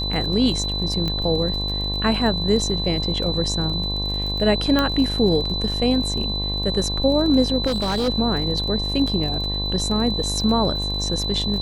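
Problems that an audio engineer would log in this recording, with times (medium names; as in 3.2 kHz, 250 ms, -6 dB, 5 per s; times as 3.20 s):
buzz 50 Hz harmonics 22 -27 dBFS
crackle 39 per s -29 dBFS
whine 4 kHz -25 dBFS
1.08 s: pop -13 dBFS
4.79 s: pop -7 dBFS
7.66–8.09 s: clipped -18.5 dBFS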